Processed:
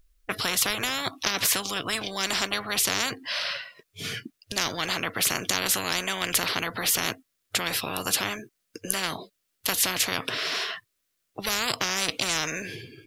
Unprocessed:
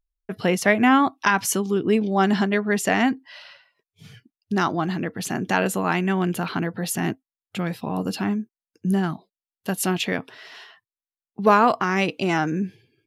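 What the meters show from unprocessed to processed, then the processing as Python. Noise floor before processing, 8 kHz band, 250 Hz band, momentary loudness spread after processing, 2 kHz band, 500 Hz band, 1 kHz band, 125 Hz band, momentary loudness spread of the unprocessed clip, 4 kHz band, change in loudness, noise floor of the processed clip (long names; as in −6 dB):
below −85 dBFS, +6.0 dB, −15.0 dB, 11 LU, −2.5 dB, −10.5 dB, −9.0 dB, −12.5 dB, 13 LU, +8.0 dB, −3.5 dB, −77 dBFS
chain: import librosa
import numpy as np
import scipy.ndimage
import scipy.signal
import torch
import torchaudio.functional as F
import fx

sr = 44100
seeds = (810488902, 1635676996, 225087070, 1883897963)

y = fx.peak_eq(x, sr, hz=860.0, db=-13.0, octaves=0.37)
y = fx.spectral_comp(y, sr, ratio=10.0)
y = y * librosa.db_to_amplitude(4.0)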